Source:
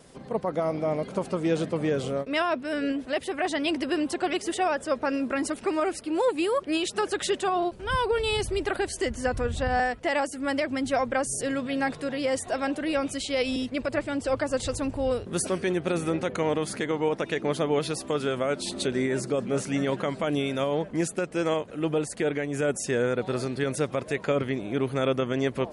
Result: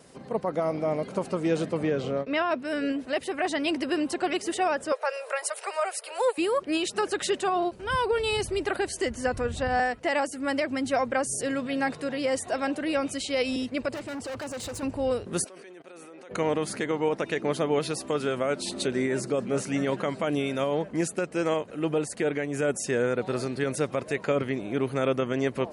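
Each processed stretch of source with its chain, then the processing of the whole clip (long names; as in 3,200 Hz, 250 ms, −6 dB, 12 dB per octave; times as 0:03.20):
0:01.83–0:02.51: high-frequency loss of the air 130 metres + multiband upward and downward compressor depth 40%
0:04.92–0:06.38: Butterworth high-pass 450 Hz 72 dB per octave + parametric band 10,000 Hz +7 dB 0.67 octaves + upward compression, threshold −31 dBFS
0:13.94–0:14.83: high-pass filter 47 Hz + gain into a clipping stage and back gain 32.5 dB
0:15.44–0:16.31: high-pass filter 380 Hz + output level in coarse steps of 23 dB
whole clip: high-pass filter 95 Hz 6 dB per octave; notch filter 3,400 Hz, Q 16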